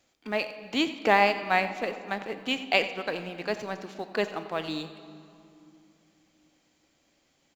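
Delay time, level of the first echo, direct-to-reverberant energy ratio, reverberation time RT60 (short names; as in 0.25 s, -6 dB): 90 ms, -15.5 dB, 9.5 dB, 2.7 s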